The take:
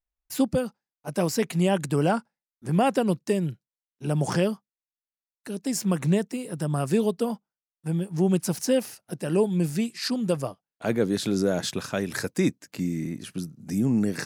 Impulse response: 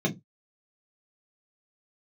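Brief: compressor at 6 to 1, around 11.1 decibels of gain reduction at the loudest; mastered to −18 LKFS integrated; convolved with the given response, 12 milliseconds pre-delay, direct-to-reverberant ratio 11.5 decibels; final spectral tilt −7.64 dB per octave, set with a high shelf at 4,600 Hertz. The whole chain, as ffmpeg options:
-filter_complex "[0:a]highshelf=frequency=4600:gain=-8.5,acompressor=threshold=-30dB:ratio=6,asplit=2[link_01][link_02];[1:a]atrim=start_sample=2205,adelay=12[link_03];[link_02][link_03]afir=irnorm=-1:irlink=0,volume=-21dB[link_04];[link_01][link_04]amix=inputs=2:normalize=0,volume=14dB"

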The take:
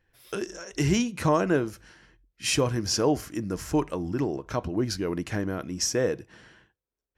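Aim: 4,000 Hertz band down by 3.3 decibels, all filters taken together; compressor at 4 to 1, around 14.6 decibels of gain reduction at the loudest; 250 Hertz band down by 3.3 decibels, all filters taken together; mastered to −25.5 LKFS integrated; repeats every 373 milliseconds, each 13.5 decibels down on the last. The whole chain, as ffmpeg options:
ffmpeg -i in.wav -af "equalizer=frequency=250:width_type=o:gain=-4.5,equalizer=frequency=4000:width_type=o:gain=-5,acompressor=threshold=-38dB:ratio=4,aecho=1:1:373|746:0.211|0.0444,volume=15dB" out.wav

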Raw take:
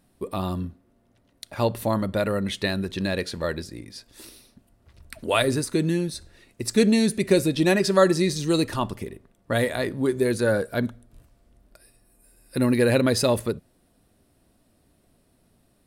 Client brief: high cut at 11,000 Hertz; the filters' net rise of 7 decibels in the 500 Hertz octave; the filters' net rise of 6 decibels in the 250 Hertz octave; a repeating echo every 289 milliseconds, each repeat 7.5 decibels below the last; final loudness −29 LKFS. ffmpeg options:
ffmpeg -i in.wav -af "lowpass=11000,equalizer=frequency=250:width_type=o:gain=5.5,equalizer=frequency=500:width_type=o:gain=7,aecho=1:1:289|578|867|1156|1445:0.422|0.177|0.0744|0.0312|0.0131,volume=-11dB" out.wav

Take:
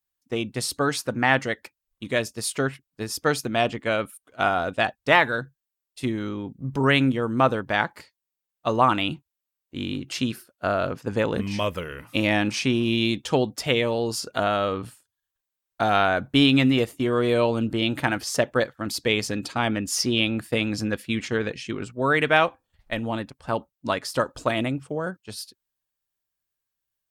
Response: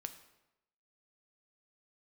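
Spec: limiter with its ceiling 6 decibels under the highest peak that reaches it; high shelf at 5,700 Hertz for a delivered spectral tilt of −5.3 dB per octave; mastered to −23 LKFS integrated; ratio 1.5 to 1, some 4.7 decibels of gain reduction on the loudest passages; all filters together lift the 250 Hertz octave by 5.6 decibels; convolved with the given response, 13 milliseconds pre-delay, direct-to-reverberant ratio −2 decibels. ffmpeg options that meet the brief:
-filter_complex "[0:a]equalizer=frequency=250:width_type=o:gain=6.5,highshelf=frequency=5700:gain=-4.5,acompressor=threshold=-23dB:ratio=1.5,alimiter=limit=-13.5dB:level=0:latency=1,asplit=2[link_01][link_02];[1:a]atrim=start_sample=2205,adelay=13[link_03];[link_02][link_03]afir=irnorm=-1:irlink=0,volume=5dB[link_04];[link_01][link_04]amix=inputs=2:normalize=0,volume=-1dB"

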